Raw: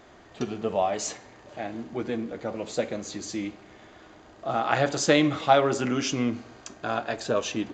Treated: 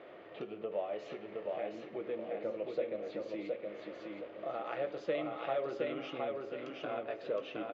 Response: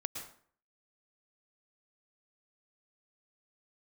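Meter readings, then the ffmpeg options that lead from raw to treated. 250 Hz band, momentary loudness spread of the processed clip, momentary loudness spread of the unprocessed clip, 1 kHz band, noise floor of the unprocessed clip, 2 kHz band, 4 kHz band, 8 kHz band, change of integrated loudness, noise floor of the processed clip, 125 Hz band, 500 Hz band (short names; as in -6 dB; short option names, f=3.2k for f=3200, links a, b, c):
-15.5 dB, 8 LU, 15 LU, -15.0 dB, -52 dBFS, -15.0 dB, -18.0 dB, under -35 dB, -12.0 dB, -51 dBFS, -20.5 dB, -8.5 dB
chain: -filter_complex "[0:a]bandreject=f=770:w=12,acompressor=threshold=-44dB:ratio=2.5,highpass=230,equalizer=f=240:t=q:w=4:g=-9,equalizer=f=520:t=q:w=4:g=8,equalizer=f=960:t=q:w=4:g=-7,equalizer=f=1.6k:t=q:w=4:g=-7,lowpass=f=2.9k:w=0.5412,lowpass=f=2.9k:w=1.3066,asplit=2[a][b];[b]adelay=19,volume=-13dB[c];[a][c]amix=inputs=2:normalize=0,asplit=2[d][e];[e]aecho=0:1:717|1434|2151|2868|3585:0.708|0.255|0.0917|0.033|0.0119[f];[d][f]amix=inputs=2:normalize=0,volume=1dB"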